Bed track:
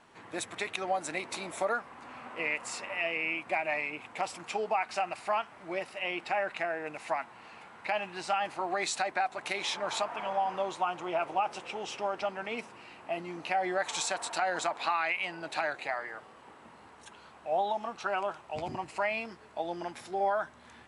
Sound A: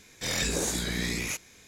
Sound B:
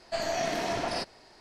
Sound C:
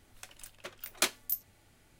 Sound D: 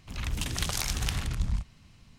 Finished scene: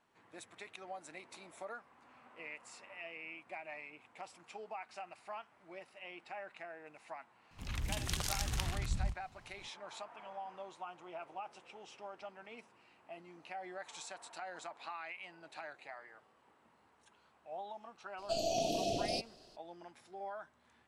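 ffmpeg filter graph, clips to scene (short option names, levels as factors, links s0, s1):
-filter_complex "[0:a]volume=0.168[s0];[2:a]asuperstop=centerf=1400:order=20:qfactor=0.78[s1];[4:a]atrim=end=2.18,asetpts=PTS-STARTPTS,volume=0.473,afade=t=in:d=0.004:c=hsin,afade=t=out:st=2.176:d=0.004:c=hsin,adelay=7510[s2];[s1]atrim=end=1.4,asetpts=PTS-STARTPTS,volume=0.668,afade=t=in:d=0.02,afade=t=out:st=1.38:d=0.02,adelay=18170[s3];[s0][s2][s3]amix=inputs=3:normalize=0"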